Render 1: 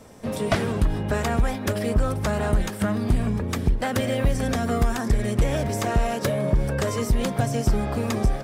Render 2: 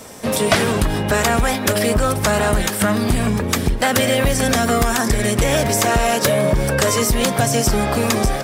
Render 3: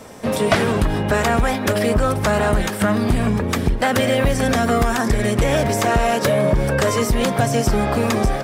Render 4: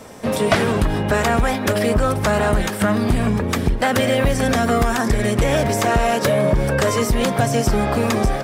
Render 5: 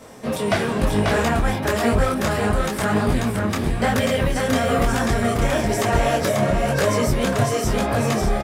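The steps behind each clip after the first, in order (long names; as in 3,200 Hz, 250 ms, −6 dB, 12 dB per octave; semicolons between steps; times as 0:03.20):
spectral tilt +2 dB per octave; in parallel at 0 dB: brickwall limiter −20 dBFS, peak gain reduction 10.5 dB; on the sum: level +5 dB
high-shelf EQ 3,700 Hz −9.5 dB
no processing that can be heard
single-tap delay 540 ms −3 dB; micro pitch shift up and down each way 35 cents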